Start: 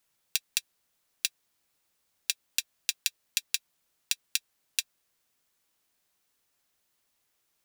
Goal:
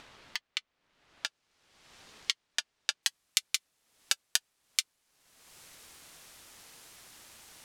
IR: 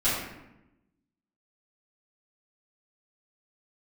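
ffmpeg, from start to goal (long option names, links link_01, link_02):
-af "asetnsamples=nb_out_samples=441:pad=0,asendcmd='1.26 lowpass f 4900;3.03 lowpass f 11000',lowpass=2900,acompressor=mode=upward:threshold=-36dB:ratio=2.5,aeval=exprs='val(0)*sin(2*PI*680*n/s+680*0.55/0.72*sin(2*PI*0.72*n/s))':channel_layout=same,volume=4.5dB"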